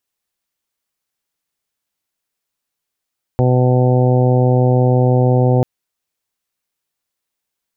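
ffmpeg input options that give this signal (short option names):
-f lavfi -i "aevalsrc='0.266*sin(2*PI*126*t)+0.106*sin(2*PI*252*t)+0.1*sin(2*PI*378*t)+0.126*sin(2*PI*504*t)+0.0562*sin(2*PI*630*t)+0.0668*sin(2*PI*756*t)+0.0316*sin(2*PI*882*t)':d=2.24:s=44100"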